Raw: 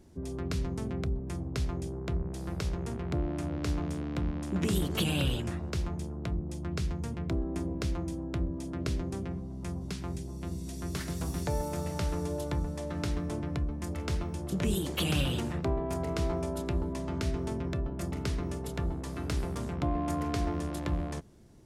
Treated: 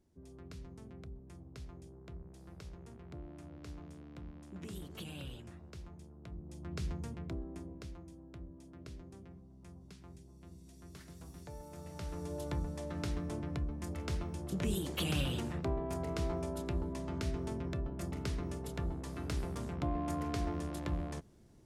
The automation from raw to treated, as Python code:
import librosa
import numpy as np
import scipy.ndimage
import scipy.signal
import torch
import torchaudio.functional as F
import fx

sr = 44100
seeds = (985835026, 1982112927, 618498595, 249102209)

y = fx.gain(x, sr, db=fx.line((6.18, -16.5), (6.9, -5.0), (8.05, -17.0), (11.6, -17.0), (12.48, -5.0)))